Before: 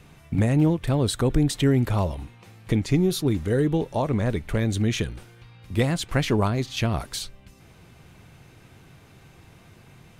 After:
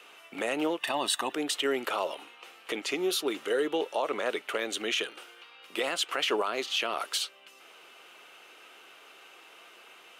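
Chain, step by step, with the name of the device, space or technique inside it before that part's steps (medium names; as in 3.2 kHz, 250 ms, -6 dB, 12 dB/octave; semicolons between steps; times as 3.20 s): laptop speaker (high-pass 400 Hz 24 dB/octave; peaking EQ 1.3 kHz +8 dB 0.32 oct; peaking EQ 2.9 kHz +11 dB 0.43 oct; peak limiter -18.5 dBFS, peak gain reduction 9.5 dB); 0.80–1.33 s: comb 1.1 ms, depth 89%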